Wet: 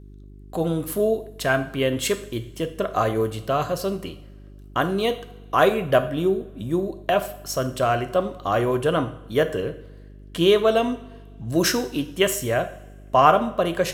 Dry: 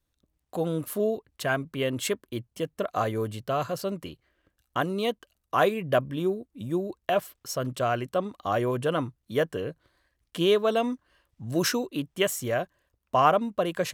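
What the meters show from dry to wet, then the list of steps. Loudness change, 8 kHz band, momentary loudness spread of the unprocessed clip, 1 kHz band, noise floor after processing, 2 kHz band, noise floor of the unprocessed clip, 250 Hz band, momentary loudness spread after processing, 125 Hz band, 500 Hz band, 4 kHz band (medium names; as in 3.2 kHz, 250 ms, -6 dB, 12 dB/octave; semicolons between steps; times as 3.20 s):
+5.0 dB, +5.0 dB, 11 LU, +5.0 dB, -44 dBFS, +5.0 dB, -79 dBFS, +5.0 dB, 11 LU, +5.0 dB, +5.5 dB, +5.0 dB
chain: two-slope reverb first 0.53 s, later 1.8 s, from -18 dB, DRR 8 dB; mains buzz 50 Hz, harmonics 8, -48 dBFS -6 dB/octave; trim +4.5 dB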